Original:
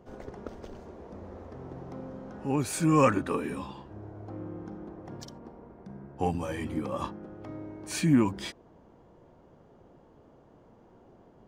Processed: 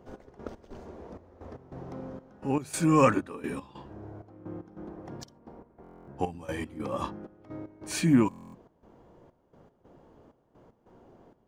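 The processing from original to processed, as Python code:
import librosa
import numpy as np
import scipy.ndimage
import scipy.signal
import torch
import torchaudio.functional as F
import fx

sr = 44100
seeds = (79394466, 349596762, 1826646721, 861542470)

y = fx.hum_notches(x, sr, base_hz=50, count=4)
y = fx.step_gate(y, sr, bpm=192, pattern='xx...xx..xxxx', floor_db=-12.0, edge_ms=4.5)
y = fx.buffer_glitch(y, sr, at_s=(5.82, 8.29), block=1024, repeats=10)
y = y * 10.0 ** (1.0 / 20.0)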